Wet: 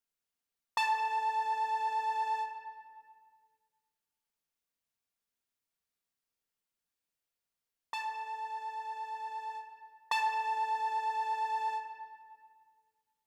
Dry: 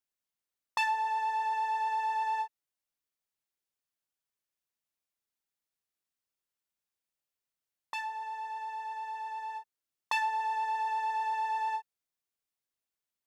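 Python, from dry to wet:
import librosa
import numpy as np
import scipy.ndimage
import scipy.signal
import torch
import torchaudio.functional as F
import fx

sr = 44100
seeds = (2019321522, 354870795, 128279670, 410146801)

y = fx.room_shoebox(x, sr, seeds[0], volume_m3=3000.0, walls='mixed', distance_m=1.7)
y = y * 10.0 ** (-1.5 / 20.0)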